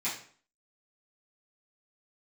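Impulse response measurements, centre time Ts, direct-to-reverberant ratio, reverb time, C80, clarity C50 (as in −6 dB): 32 ms, −12.5 dB, 0.50 s, 10.5 dB, 6.5 dB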